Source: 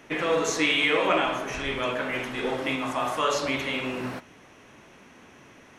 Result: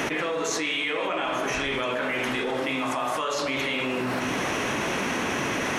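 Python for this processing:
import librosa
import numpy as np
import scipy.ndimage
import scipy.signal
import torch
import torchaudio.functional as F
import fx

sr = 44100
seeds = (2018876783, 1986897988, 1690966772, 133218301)

y = fx.low_shelf(x, sr, hz=110.0, db=-8.5)
y = y + 10.0 ** (-23.5 / 20.0) * np.pad(y, (int(204 * sr / 1000.0), 0))[:len(y)]
y = fx.env_flatten(y, sr, amount_pct=100)
y = F.gain(torch.from_numpy(y), -7.0).numpy()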